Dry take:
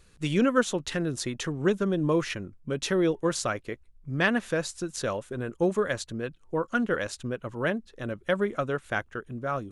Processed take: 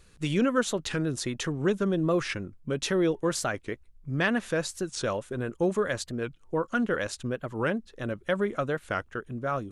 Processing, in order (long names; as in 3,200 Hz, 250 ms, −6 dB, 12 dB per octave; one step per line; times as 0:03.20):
in parallel at −1 dB: brickwall limiter −21.5 dBFS, peak gain reduction 12 dB
on the sum: wow of a warped record 45 rpm, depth 160 cents
level −4.5 dB